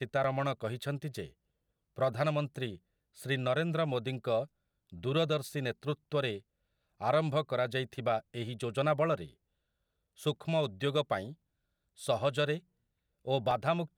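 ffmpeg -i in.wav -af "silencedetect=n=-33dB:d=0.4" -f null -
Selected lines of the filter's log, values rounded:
silence_start: 1.22
silence_end: 1.98 | silence_duration: 0.77
silence_start: 2.70
silence_end: 3.26 | silence_duration: 0.56
silence_start: 4.43
silence_end: 5.04 | silence_duration: 0.61
silence_start: 6.36
silence_end: 7.02 | silence_duration: 0.66
silence_start: 9.24
silence_end: 10.26 | silence_duration: 1.02
silence_start: 11.24
silence_end: 12.05 | silence_duration: 0.81
silence_start: 12.56
silence_end: 13.28 | silence_duration: 0.71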